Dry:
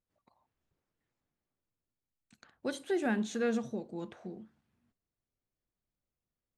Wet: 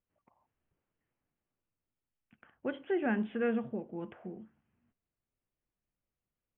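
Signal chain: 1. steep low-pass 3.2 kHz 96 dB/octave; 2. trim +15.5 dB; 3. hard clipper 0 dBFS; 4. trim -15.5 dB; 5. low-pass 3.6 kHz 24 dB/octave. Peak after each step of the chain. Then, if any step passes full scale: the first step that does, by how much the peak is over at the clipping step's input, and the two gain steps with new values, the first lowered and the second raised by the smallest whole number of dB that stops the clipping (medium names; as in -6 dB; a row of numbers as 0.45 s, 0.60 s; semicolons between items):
-21.0 dBFS, -5.5 dBFS, -5.5 dBFS, -21.0 dBFS, -21.0 dBFS; nothing clips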